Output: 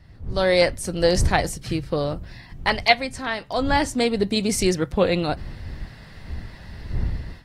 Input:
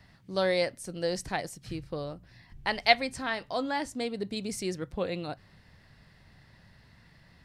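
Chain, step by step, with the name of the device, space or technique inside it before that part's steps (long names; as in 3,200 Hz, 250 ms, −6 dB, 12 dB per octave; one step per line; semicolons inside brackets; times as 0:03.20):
smartphone video outdoors (wind on the microphone 82 Hz −41 dBFS; automatic gain control gain up to 14 dB; level −1 dB; AAC 48 kbit/s 48,000 Hz)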